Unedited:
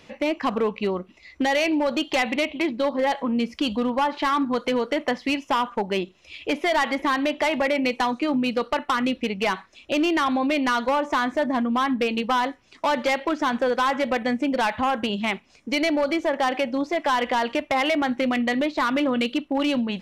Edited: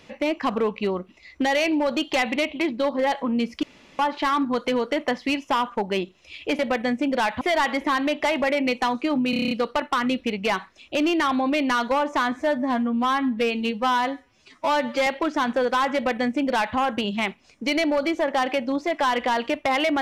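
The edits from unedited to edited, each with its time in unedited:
0:03.63–0:03.99: fill with room tone
0:08.48: stutter 0.03 s, 8 plays
0:11.29–0:13.12: time-stretch 1.5×
0:14.00–0:14.82: duplicate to 0:06.59

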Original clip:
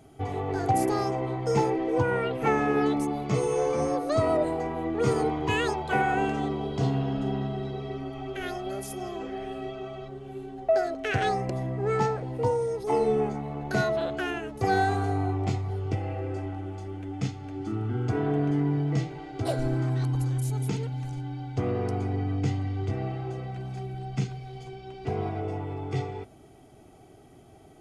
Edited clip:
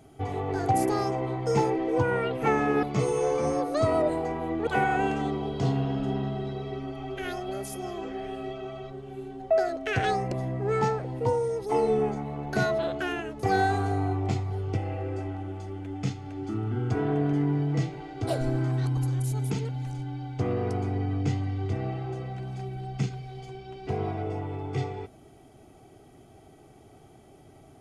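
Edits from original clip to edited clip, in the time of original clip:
0:02.83–0:03.18: remove
0:05.02–0:05.85: remove

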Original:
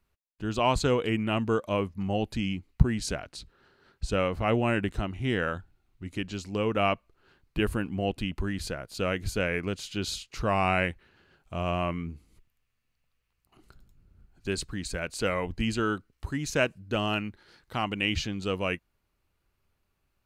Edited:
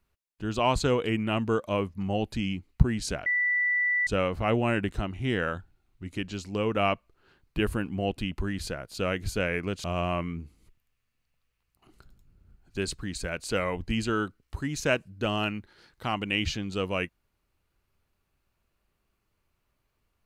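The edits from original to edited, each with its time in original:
0:03.26–0:04.07: beep over 1,970 Hz −22.5 dBFS
0:09.84–0:11.54: remove

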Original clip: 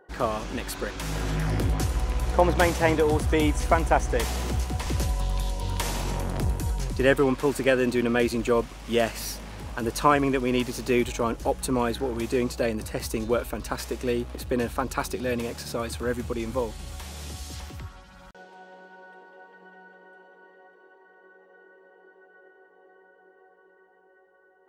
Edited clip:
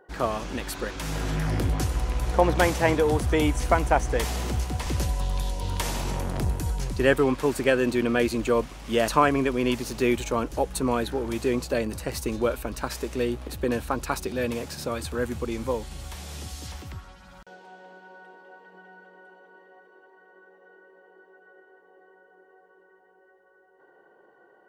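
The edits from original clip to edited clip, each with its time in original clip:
0:09.08–0:09.96: remove

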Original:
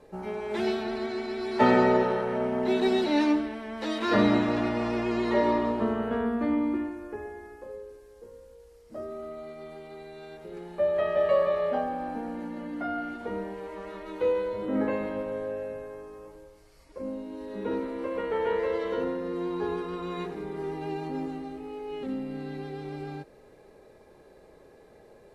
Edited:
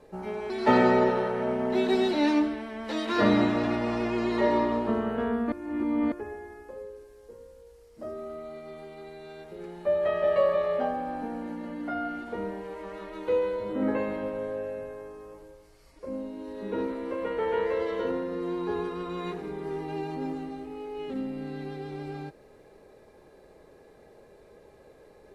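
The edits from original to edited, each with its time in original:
0:00.50–0:01.43: remove
0:06.45–0:07.05: reverse

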